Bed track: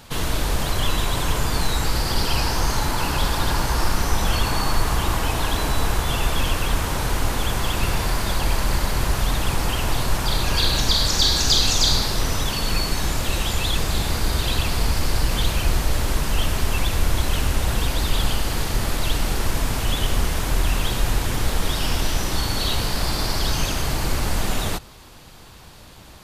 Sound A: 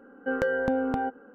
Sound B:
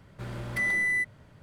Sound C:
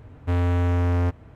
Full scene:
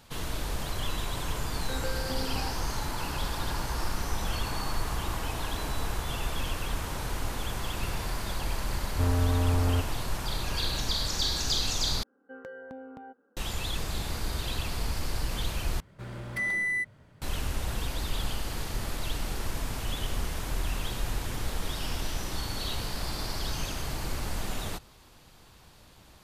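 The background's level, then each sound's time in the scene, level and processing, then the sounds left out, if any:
bed track -10.5 dB
1.42 s: add A -11.5 dB
8.71 s: add C -4.5 dB + low-pass 1.6 kHz 24 dB/octave
12.03 s: replace with A -17 dB + high-pass 110 Hz 6 dB/octave
15.80 s: replace with B -2.5 dB

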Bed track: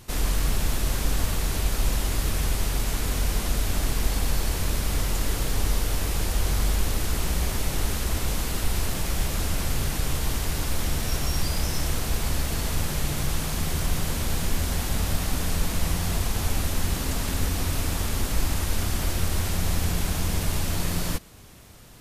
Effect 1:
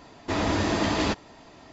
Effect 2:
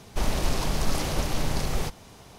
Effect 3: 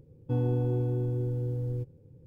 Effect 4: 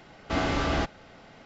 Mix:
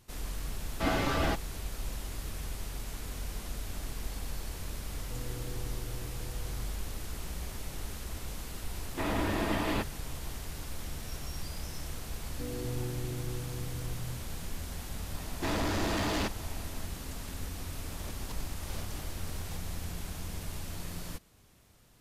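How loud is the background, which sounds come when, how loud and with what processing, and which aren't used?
bed track -13.5 dB
0.50 s: add 4 -1 dB + expander on every frequency bin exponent 1.5
4.81 s: add 3 -16 dB
8.69 s: add 1 -5.5 dB + Chebyshev low-pass 2.9 kHz
12.10 s: add 3 -6.5 dB + three bands offset in time mids, lows, highs 240/350 ms, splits 160/730 Hz
15.14 s: add 1 + saturation -29 dBFS
17.68 s: add 2 -18 dB + compressor with a negative ratio -28 dBFS

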